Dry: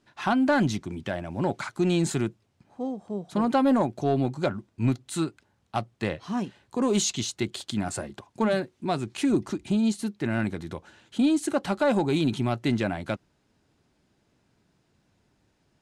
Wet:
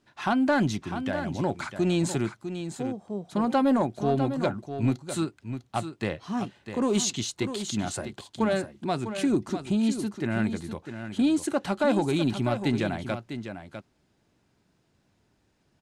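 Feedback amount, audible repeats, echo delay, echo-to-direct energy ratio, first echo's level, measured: no regular repeats, 1, 651 ms, -9.5 dB, -9.5 dB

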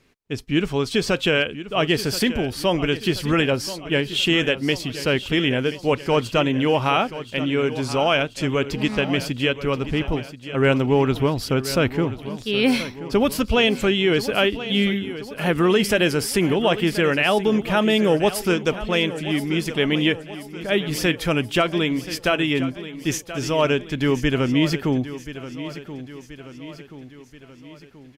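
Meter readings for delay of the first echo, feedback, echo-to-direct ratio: 1030 ms, 52%, -12.0 dB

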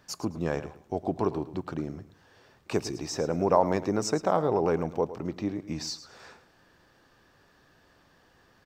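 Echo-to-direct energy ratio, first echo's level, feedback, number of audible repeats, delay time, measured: -13.5 dB, -14.0 dB, 25%, 2, 109 ms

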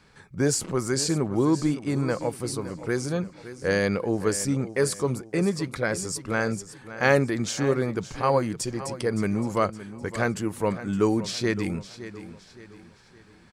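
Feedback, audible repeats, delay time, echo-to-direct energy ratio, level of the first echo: 39%, 3, 565 ms, -13.5 dB, -14.0 dB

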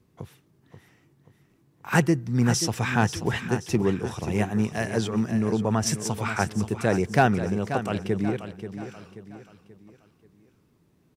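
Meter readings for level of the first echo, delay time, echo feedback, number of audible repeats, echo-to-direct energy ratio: -10.5 dB, 533 ms, 42%, 4, -9.5 dB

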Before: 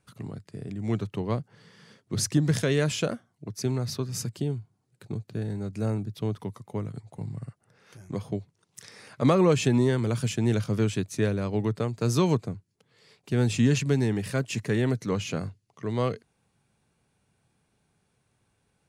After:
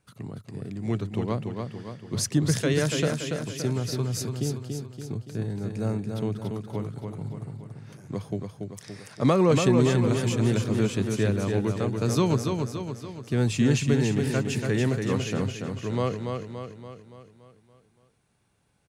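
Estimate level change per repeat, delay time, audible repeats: -5.5 dB, 285 ms, 6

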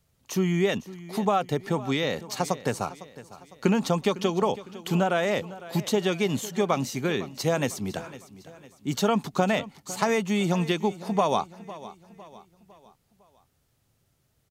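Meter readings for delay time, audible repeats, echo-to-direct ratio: 505 ms, 3, -16.0 dB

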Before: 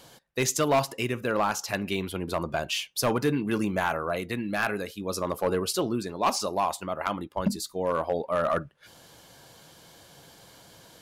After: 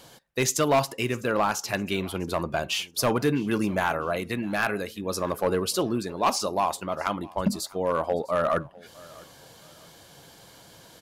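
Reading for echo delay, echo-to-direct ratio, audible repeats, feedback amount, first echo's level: 654 ms, -22.5 dB, 2, 32%, -23.0 dB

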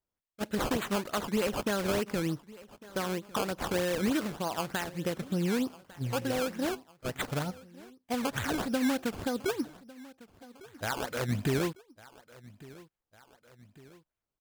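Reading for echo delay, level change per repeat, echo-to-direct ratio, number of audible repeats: 1152 ms, -5.0 dB, -19.5 dB, 2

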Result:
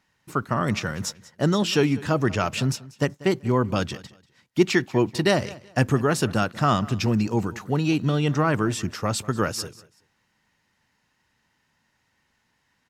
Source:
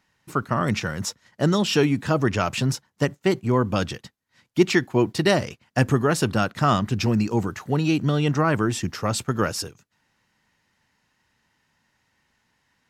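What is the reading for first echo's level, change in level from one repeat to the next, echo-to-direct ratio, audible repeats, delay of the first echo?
-20.0 dB, -12.5 dB, -20.0 dB, 2, 190 ms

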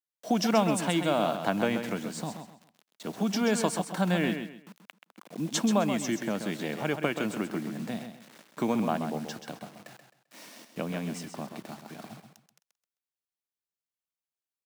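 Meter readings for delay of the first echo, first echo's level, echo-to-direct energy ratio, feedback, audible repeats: 131 ms, -8.0 dB, -7.5 dB, 28%, 3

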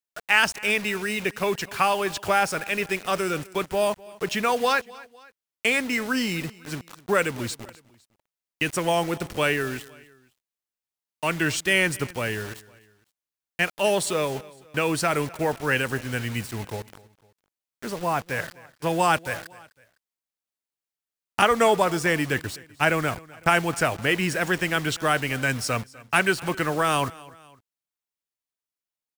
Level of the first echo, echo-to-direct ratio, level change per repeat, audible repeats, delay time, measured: -21.5 dB, -20.5 dB, -6.5 dB, 2, 253 ms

